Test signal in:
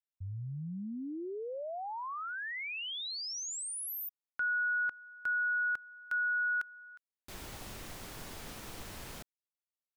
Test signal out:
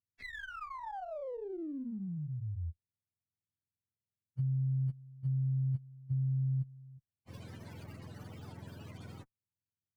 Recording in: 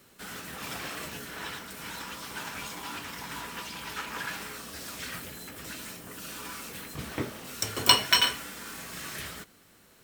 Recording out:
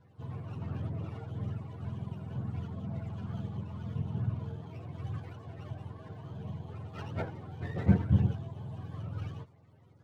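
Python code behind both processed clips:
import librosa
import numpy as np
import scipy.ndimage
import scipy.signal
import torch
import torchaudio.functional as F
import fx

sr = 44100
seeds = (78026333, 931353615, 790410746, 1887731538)

y = fx.octave_mirror(x, sr, pivot_hz=440.0)
y = fx.running_max(y, sr, window=5)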